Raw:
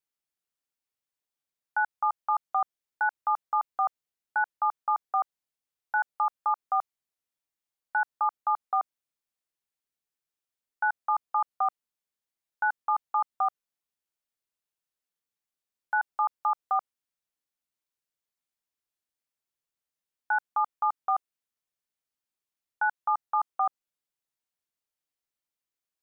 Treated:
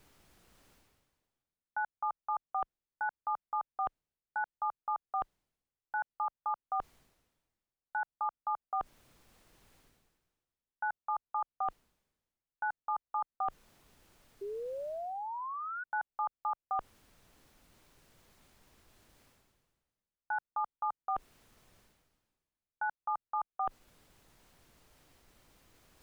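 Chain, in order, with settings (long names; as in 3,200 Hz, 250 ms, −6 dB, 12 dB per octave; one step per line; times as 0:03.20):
spectral tilt −3 dB per octave
reversed playback
upward compression, threshold −27 dBFS
reversed playback
sound drawn into the spectrogram rise, 0:14.41–0:15.84, 390–1,500 Hz −31 dBFS
level −8 dB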